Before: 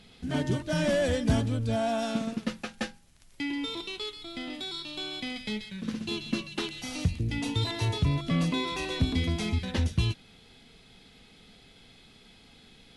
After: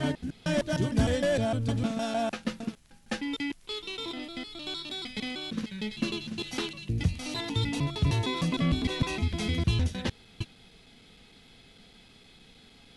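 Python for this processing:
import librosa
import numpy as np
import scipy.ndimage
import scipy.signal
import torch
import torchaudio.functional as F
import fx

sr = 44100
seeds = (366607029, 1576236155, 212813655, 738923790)

y = fx.block_reorder(x, sr, ms=153.0, group=3)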